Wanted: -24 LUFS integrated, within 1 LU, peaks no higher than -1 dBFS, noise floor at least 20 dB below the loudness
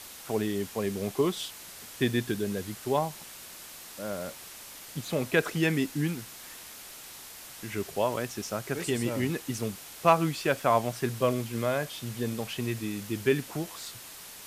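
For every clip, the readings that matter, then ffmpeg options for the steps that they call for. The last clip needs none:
noise floor -46 dBFS; noise floor target -51 dBFS; loudness -30.5 LUFS; peak level -9.5 dBFS; loudness target -24.0 LUFS
-> -af "afftdn=nr=6:nf=-46"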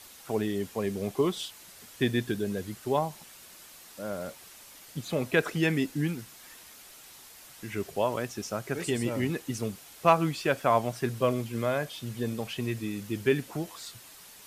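noise floor -51 dBFS; loudness -30.5 LUFS; peak level -9.5 dBFS; loudness target -24.0 LUFS
-> -af "volume=2.11"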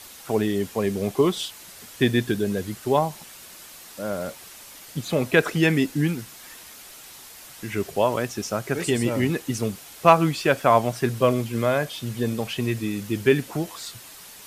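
loudness -24.0 LUFS; peak level -3.0 dBFS; noise floor -44 dBFS

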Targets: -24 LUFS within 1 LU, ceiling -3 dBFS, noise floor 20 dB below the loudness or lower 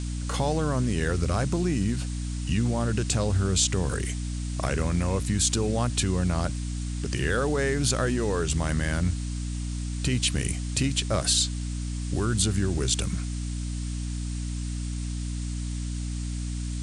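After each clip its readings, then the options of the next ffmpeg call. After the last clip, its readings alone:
hum 60 Hz; highest harmonic 300 Hz; hum level -28 dBFS; noise floor -31 dBFS; noise floor target -48 dBFS; loudness -27.5 LUFS; peak level -9.5 dBFS; loudness target -24.0 LUFS
-> -af "bandreject=f=60:t=h:w=6,bandreject=f=120:t=h:w=6,bandreject=f=180:t=h:w=6,bandreject=f=240:t=h:w=6,bandreject=f=300:t=h:w=6"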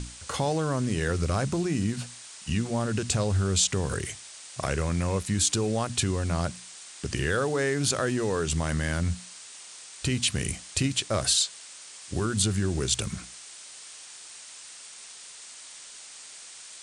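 hum not found; noise floor -46 dBFS; noise floor target -48 dBFS
-> -af "afftdn=nr=6:nf=-46"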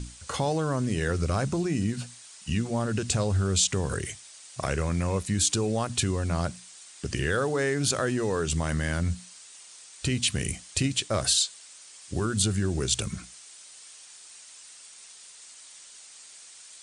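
noise floor -49 dBFS; loudness -27.5 LUFS; peak level -10.5 dBFS; loudness target -24.0 LUFS
-> -af "volume=1.5"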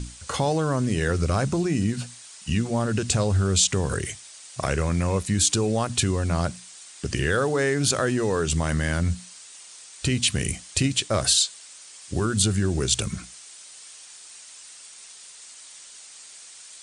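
loudness -24.0 LUFS; peak level -7.0 dBFS; noise floor -46 dBFS

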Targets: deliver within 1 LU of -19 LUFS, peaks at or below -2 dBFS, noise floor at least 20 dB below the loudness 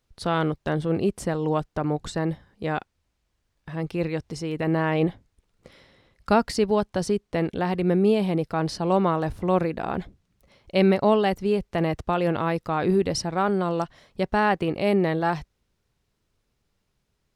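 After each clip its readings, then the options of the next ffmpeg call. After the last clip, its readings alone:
loudness -25.0 LUFS; peak level -7.0 dBFS; loudness target -19.0 LUFS
-> -af "volume=2,alimiter=limit=0.794:level=0:latency=1"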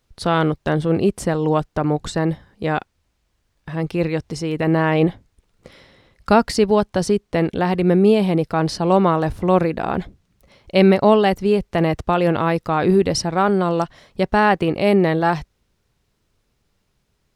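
loudness -19.0 LUFS; peak level -2.0 dBFS; noise floor -69 dBFS

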